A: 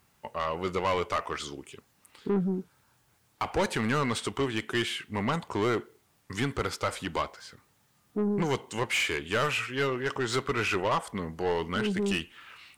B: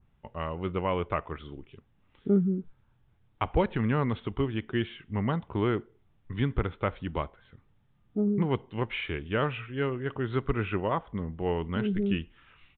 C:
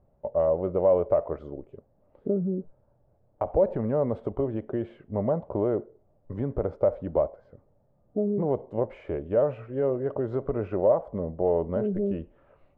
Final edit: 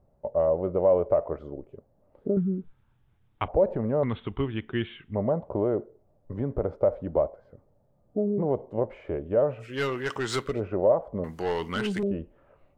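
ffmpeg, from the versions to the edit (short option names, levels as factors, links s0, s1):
-filter_complex "[1:a]asplit=2[s0][s1];[0:a]asplit=2[s2][s3];[2:a]asplit=5[s4][s5][s6][s7][s8];[s4]atrim=end=2.372[s9];[s0]atrim=start=2.368:end=3.482[s10];[s5]atrim=start=3.478:end=4.032[s11];[s1]atrim=start=4.028:end=5.152[s12];[s6]atrim=start=5.148:end=9.83[s13];[s2]atrim=start=9.59:end=10.62[s14];[s7]atrim=start=10.38:end=11.242[s15];[s3]atrim=start=11.238:end=12.032[s16];[s8]atrim=start=12.028[s17];[s9][s10]acrossfade=d=0.004:c1=hsin:c2=hsin[s18];[s18][s11]acrossfade=d=0.004:c1=hsin:c2=hsin[s19];[s19][s12]acrossfade=d=0.004:c1=hsin:c2=hsin[s20];[s20][s13]acrossfade=d=0.004:c1=hsin:c2=hsin[s21];[s21][s14]acrossfade=d=0.24:c1=tri:c2=tri[s22];[s22][s15]acrossfade=d=0.24:c1=tri:c2=tri[s23];[s23][s16]acrossfade=d=0.004:c1=hsin:c2=hsin[s24];[s24][s17]acrossfade=d=0.004:c1=hsin:c2=hsin"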